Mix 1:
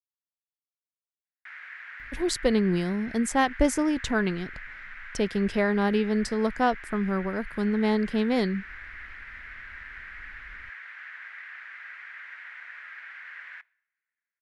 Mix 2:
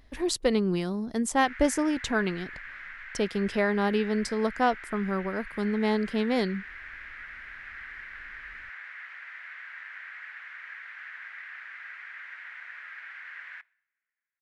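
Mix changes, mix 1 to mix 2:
speech: entry -2.00 s; master: add low shelf 170 Hz -7 dB

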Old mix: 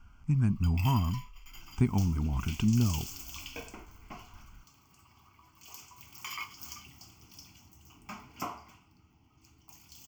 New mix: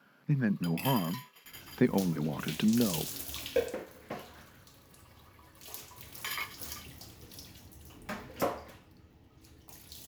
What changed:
speech: add Chebyshev band-pass 150–5300 Hz, order 4; second sound: add low shelf 220 Hz +6 dB; master: remove fixed phaser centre 2600 Hz, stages 8

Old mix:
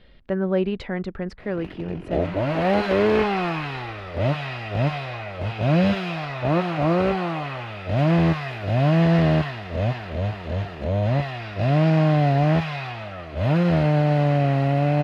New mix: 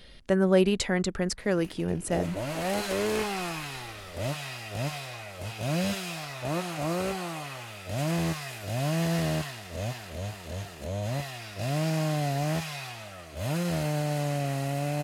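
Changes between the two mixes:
background -10.5 dB; master: remove air absorption 340 m

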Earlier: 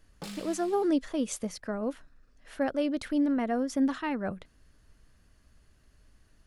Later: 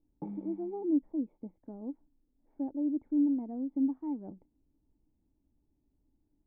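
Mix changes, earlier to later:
background +11.5 dB; master: add vocal tract filter u

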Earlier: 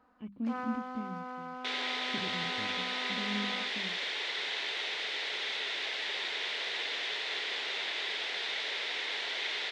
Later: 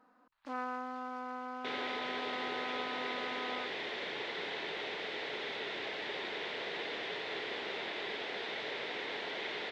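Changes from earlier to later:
speech: muted; second sound: add tilt -4.5 dB/oct

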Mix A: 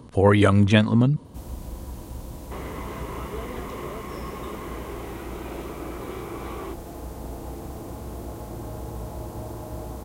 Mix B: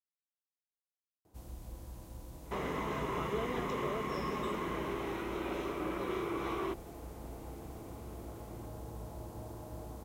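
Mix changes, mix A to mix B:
speech: muted; first sound -10.5 dB

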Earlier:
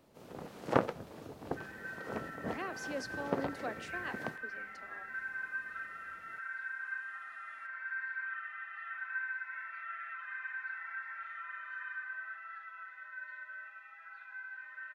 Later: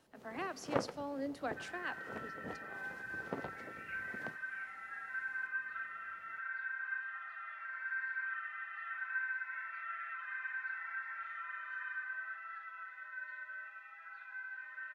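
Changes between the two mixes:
speech: entry -2.20 s; first sound -7.0 dB

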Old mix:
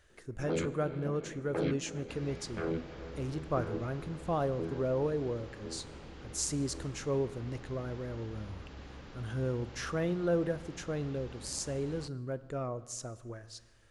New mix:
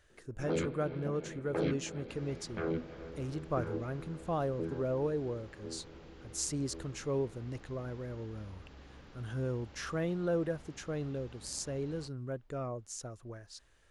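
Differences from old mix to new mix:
speech: send off; second sound -5.5 dB

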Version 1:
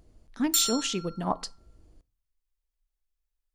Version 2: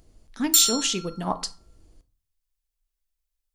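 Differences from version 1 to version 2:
speech: send +8.0 dB; master: add high shelf 2600 Hz +7.5 dB

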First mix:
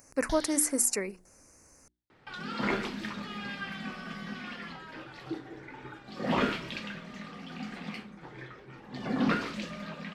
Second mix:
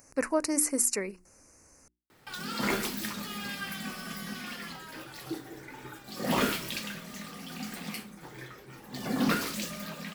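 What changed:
first sound: muted; second sound: remove LPF 3200 Hz 12 dB/oct

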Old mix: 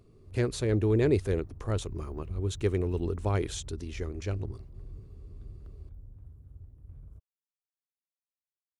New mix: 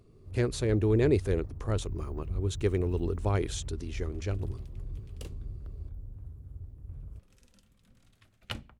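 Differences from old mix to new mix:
first sound +5.0 dB; second sound: unmuted

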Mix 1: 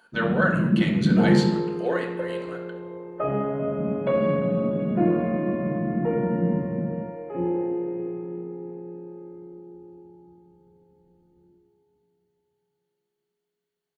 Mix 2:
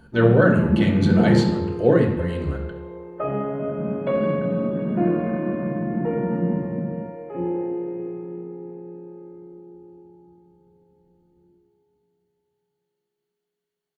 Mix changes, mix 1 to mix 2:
speech: remove HPF 790 Hz 12 dB/oct; first sound: remove running mean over 52 samples

